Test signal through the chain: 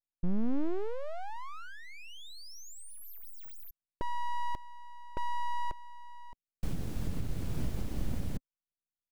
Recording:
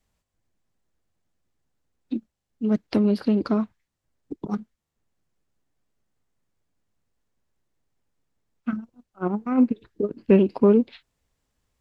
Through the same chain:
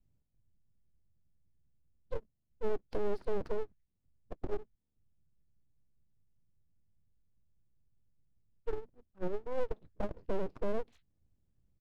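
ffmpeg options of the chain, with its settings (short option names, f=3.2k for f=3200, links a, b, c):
-af "firequalizer=gain_entry='entry(130,0);entry(260,-12);entry(910,-23)':delay=0.05:min_phase=1,aeval=exprs='abs(val(0))':c=same,alimiter=level_in=2.5dB:limit=-24dB:level=0:latency=1:release=475,volume=-2.5dB,volume=4.5dB"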